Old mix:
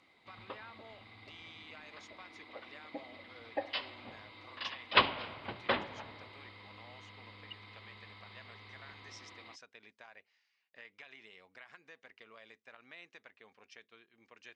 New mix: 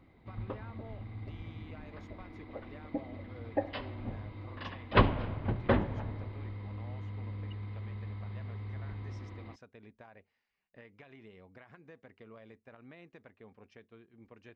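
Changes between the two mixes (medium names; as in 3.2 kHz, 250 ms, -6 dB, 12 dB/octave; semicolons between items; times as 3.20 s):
background: add peaking EQ 1.7 kHz +4 dB 0.47 oct; master: remove frequency weighting ITU-R 468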